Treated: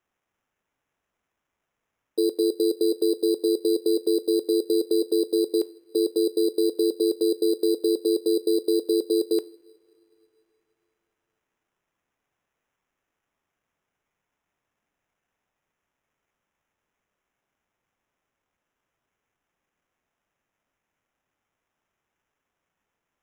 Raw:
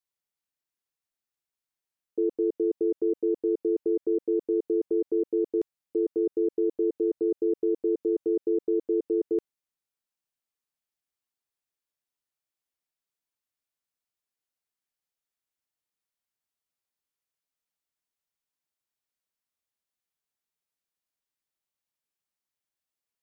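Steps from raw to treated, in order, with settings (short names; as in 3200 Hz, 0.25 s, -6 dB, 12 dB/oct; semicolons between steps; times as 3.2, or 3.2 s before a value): Bessel high-pass 450 Hz, order 2; two-slope reverb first 0.39 s, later 2.9 s, from -18 dB, DRR 15.5 dB; sample-and-hold 10×; gain +8 dB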